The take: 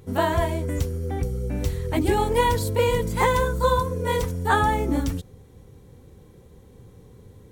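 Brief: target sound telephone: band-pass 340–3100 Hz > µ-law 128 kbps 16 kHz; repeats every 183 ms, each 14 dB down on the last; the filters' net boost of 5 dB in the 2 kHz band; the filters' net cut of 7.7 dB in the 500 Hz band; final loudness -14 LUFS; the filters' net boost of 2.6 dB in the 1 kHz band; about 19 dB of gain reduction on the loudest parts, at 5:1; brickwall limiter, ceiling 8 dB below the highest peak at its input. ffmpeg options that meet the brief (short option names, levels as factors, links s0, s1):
-af "equalizer=f=500:t=o:g=-9,equalizer=f=1000:t=o:g=4,equalizer=f=2000:t=o:g=6,acompressor=threshold=0.0158:ratio=5,alimiter=level_in=2.11:limit=0.0631:level=0:latency=1,volume=0.473,highpass=340,lowpass=3100,aecho=1:1:183|366:0.2|0.0399,volume=28.2" -ar 16000 -c:a pcm_mulaw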